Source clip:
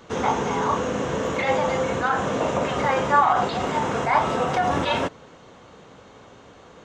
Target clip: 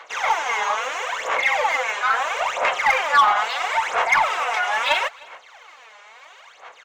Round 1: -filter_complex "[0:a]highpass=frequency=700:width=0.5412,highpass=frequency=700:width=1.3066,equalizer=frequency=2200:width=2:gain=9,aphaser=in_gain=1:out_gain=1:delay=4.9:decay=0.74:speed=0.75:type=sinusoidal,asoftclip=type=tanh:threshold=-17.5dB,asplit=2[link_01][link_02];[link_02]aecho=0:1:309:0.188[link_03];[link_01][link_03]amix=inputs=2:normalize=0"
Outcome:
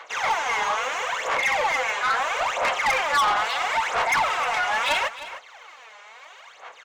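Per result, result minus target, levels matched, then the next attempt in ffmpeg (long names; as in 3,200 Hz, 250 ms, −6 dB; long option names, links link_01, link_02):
echo-to-direct +10.5 dB; soft clipping: distortion +7 dB
-filter_complex "[0:a]highpass=frequency=700:width=0.5412,highpass=frequency=700:width=1.3066,equalizer=frequency=2200:width=2:gain=9,aphaser=in_gain=1:out_gain=1:delay=4.9:decay=0.74:speed=0.75:type=sinusoidal,asoftclip=type=tanh:threshold=-17.5dB,asplit=2[link_01][link_02];[link_02]aecho=0:1:309:0.0562[link_03];[link_01][link_03]amix=inputs=2:normalize=0"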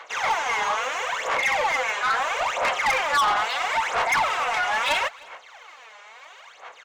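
soft clipping: distortion +7 dB
-filter_complex "[0:a]highpass=frequency=700:width=0.5412,highpass=frequency=700:width=1.3066,equalizer=frequency=2200:width=2:gain=9,aphaser=in_gain=1:out_gain=1:delay=4.9:decay=0.74:speed=0.75:type=sinusoidal,asoftclip=type=tanh:threshold=-9dB,asplit=2[link_01][link_02];[link_02]aecho=0:1:309:0.0562[link_03];[link_01][link_03]amix=inputs=2:normalize=0"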